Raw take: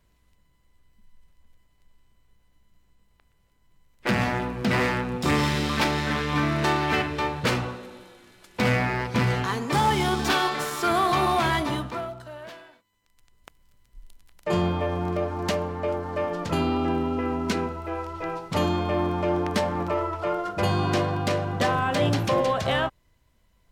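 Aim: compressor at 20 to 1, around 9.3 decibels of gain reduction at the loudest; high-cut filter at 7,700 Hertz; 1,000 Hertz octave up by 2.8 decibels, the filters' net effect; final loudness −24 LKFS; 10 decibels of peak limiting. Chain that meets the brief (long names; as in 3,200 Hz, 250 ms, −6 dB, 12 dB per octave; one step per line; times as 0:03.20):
low-pass filter 7,700 Hz
parametric band 1,000 Hz +3.5 dB
downward compressor 20 to 1, threshold −25 dBFS
level +10 dB
brickwall limiter −15 dBFS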